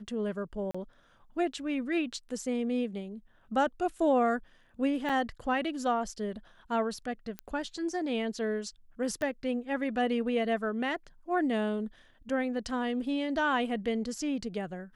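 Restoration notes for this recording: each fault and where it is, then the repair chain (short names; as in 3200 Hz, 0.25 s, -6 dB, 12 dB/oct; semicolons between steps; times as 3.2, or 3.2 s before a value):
0.71–0.74 gap 35 ms
5.09–5.1 gap 6.1 ms
7.39 pop -22 dBFS
9.22 pop -21 dBFS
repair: de-click; interpolate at 0.71, 35 ms; interpolate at 5.09, 6.1 ms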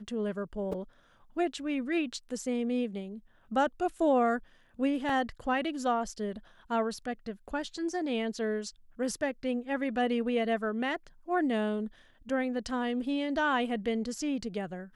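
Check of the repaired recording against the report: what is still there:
9.22 pop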